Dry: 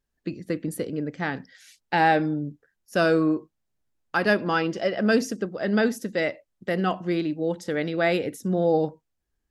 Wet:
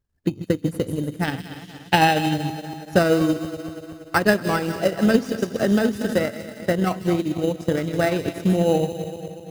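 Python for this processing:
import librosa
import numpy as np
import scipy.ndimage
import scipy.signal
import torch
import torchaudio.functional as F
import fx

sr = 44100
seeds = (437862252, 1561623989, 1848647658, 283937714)

p1 = fx.reverse_delay_fb(x, sr, ms=119, feedback_pct=75, wet_db=-10)
p2 = fx.sample_hold(p1, sr, seeds[0], rate_hz=3400.0, jitter_pct=0)
p3 = p1 + (p2 * librosa.db_to_amplitude(-5.5))
p4 = fx.peak_eq(p3, sr, hz=3100.0, db=13.0, octaves=0.5, at=(1.24, 2.34))
p5 = fx.echo_wet_highpass(p4, sr, ms=158, feedback_pct=51, hz=3200.0, wet_db=-4.5)
p6 = fx.transient(p5, sr, attack_db=8, sustain_db=-5)
p7 = fx.peak_eq(p6, sr, hz=96.0, db=14.0, octaves=1.0)
p8 = fx.band_squash(p7, sr, depth_pct=70, at=(5.59, 6.24))
y = p8 * librosa.db_to_amplitude(-4.0)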